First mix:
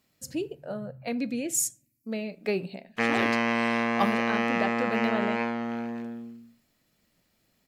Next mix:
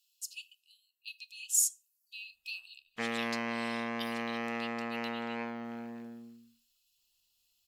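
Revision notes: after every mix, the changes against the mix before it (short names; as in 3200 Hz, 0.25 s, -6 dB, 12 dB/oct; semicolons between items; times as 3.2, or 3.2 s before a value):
speech: add brick-wall FIR high-pass 2500 Hz; background -9.5 dB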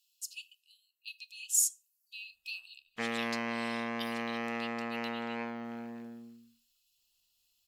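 none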